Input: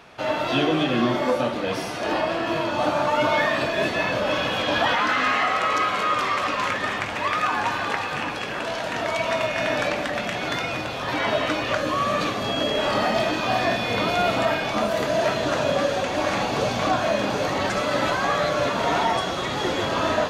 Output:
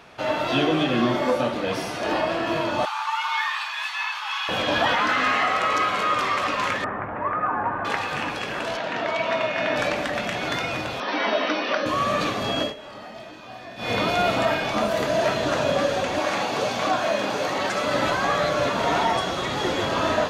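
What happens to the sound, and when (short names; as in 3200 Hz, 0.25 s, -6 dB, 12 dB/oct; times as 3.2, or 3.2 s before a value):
2.85–4.49 rippled Chebyshev high-pass 810 Hz, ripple 3 dB
6.84–7.85 LPF 1500 Hz 24 dB/oct
8.77–9.76 BPF 150–4300 Hz
11–11.86 brick-wall FIR band-pass 180–6200 Hz
12.61–13.9 dip -17.5 dB, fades 0.14 s
16.19–17.84 HPF 290 Hz 6 dB/oct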